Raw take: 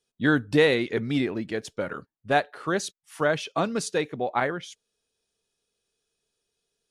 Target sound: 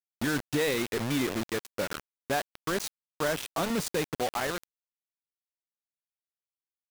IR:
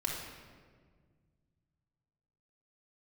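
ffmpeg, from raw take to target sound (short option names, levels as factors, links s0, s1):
-filter_complex "[0:a]asettb=1/sr,asplit=3[s0][s1][s2];[s0]atrim=end=3.704[s3];[s1]atrim=start=3.7:end=4.15,asetpts=PTS-STARTPTS,afade=t=in:d=0.004:c=qsin,afade=t=out:st=0.446:d=0.004:c=qsin,lowshelf=f=190:g=10[s4];[s2]atrim=start=4.146[s5];[s3][s4]acrossfade=d=0.004:c1=hsin:c2=qsin[s6];[s6][s5]acrossfade=d=0.004:c1=qsin:c2=hsin,alimiter=limit=0.133:level=0:latency=1:release=72,acrusher=bits=4:mix=0:aa=0.000001,volume=0.75"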